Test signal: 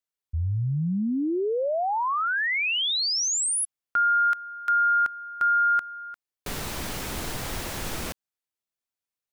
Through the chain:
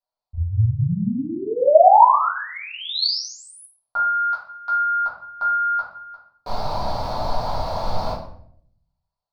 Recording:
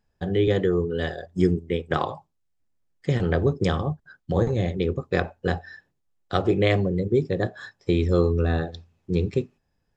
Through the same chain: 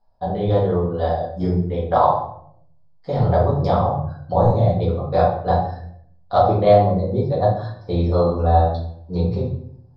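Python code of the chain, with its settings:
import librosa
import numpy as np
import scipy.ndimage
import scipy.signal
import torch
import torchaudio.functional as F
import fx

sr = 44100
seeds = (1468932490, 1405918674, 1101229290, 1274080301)

y = fx.curve_eq(x, sr, hz=(110.0, 390.0, 620.0, 910.0, 1800.0, 3000.0, 4400.0, 7100.0), db=(0, -7, 11, 14, -11, -12, 5, -20))
y = fx.room_shoebox(y, sr, seeds[0], volume_m3=100.0, walls='mixed', distance_m=1.8)
y = y * 10.0 ** (-5.0 / 20.0)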